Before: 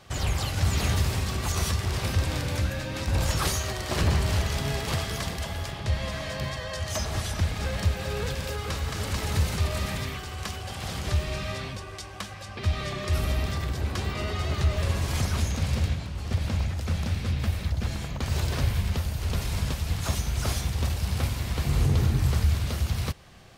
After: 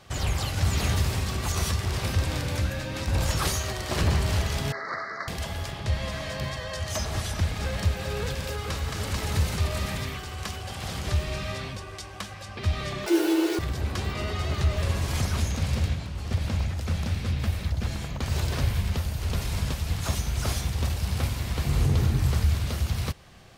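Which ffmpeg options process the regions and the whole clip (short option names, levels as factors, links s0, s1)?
-filter_complex "[0:a]asettb=1/sr,asplit=3[s0][s1][s2];[s0]atrim=end=4.724[s3];[s1]atrim=start=4.72:end=5.28,asetpts=PTS-STARTPTS,afade=t=in:d=0.004:c=qsin,afade=t=out:st=0.556:d=0.004:c=qsin,asuperstop=centerf=2900:order=12:qfactor=1.6,highpass=450,equalizer=f=450:t=q:w=4:g=-4,equalizer=f=830:t=q:w=4:g=-7,equalizer=f=1300:t=q:w=4:g=9,equalizer=f=1900:t=q:w=4:g=6,equalizer=f=2600:t=q:w=4:g=-6,equalizer=f=3800:t=q:w=4:g=-7,lowpass=f=3900:w=0.5412,lowpass=f=3900:w=1.3066[s4];[s2]atrim=start=5.276[s5];[s3][s4]acrossfade=d=0.004:c1=hsin:c2=qsin[s6];[s6][s5]acrossfade=d=0.004:c1=qsin:c2=hsin,asettb=1/sr,asplit=3[s7][s8][s9];[s7]atrim=end=13.064[s10];[s8]atrim=start=13.06:end=13.59,asetpts=PTS-STARTPTS,afade=t=in:d=0.004:c=qsin,afade=t=out:st=0.526:d=0.004:c=qsin,afreqshift=260,acrusher=bits=5:mix=0:aa=0.5,asplit=2[s11][s12];[s12]adelay=12,volume=0.562[s13];[s11][s13]amix=inputs=2:normalize=0,atrim=end_sample=23373[s14];[s9]atrim=start=13.586[s15];[s10][s14]acrossfade=d=0.004:c1=hsin:c2=qsin[s16];[s16][s15]acrossfade=d=0.004:c1=qsin:c2=hsin"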